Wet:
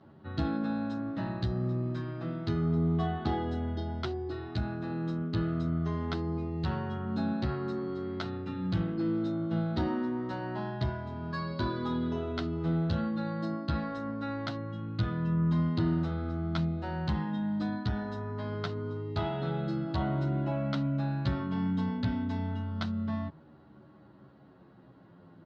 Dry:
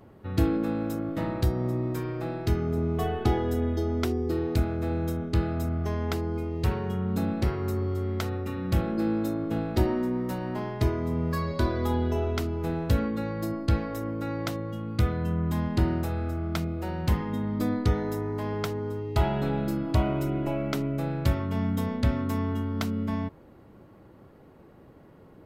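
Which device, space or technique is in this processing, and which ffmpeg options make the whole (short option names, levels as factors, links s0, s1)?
barber-pole flanger into a guitar amplifier: -filter_complex "[0:a]asplit=2[s0][s1];[s1]adelay=10.2,afreqshift=-0.3[s2];[s0][s2]amix=inputs=2:normalize=1,asoftclip=type=tanh:threshold=0.119,highpass=95,equalizer=f=160:t=q:w=4:g=6,equalizer=f=460:t=q:w=4:g=-8,equalizer=f=1500:t=q:w=4:g=3,equalizer=f=2300:t=q:w=4:g=-7,equalizer=f=4000:t=q:w=4:g=5,lowpass=f=4600:w=0.5412,lowpass=f=4600:w=1.3066"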